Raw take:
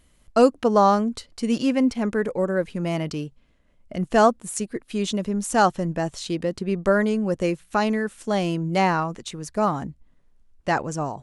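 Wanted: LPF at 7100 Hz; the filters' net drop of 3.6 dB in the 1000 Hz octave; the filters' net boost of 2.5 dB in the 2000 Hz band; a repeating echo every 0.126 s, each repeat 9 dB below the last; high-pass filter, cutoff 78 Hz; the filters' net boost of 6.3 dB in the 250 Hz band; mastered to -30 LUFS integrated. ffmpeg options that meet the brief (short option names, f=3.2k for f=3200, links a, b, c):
-af "highpass=78,lowpass=7.1k,equalizer=f=250:t=o:g=8,equalizer=f=1k:t=o:g=-7,equalizer=f=2k:t=o:g=6,aecho=1:1:126|252|378|504:0.355|0.124|0.0435|0.0152,volume=-10.5dB"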